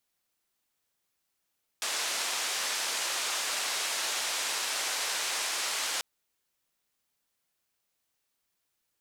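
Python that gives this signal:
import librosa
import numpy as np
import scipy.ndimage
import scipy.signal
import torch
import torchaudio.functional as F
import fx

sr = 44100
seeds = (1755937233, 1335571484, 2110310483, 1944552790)

y = fx.band_noise(sr, seeds[0], length_s=4.19, low_hz=570.0, high_hz=7400.0, level_db=-32.0)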